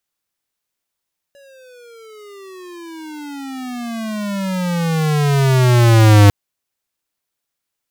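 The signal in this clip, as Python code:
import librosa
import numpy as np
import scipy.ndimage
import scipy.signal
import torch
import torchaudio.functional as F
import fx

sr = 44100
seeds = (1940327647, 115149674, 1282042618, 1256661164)

y = fx.riser_tone(sr, length_s=4.95, level_db=-6.5, wave='square', hz=567.0, rise_st=-30.0, swell_db=38.5)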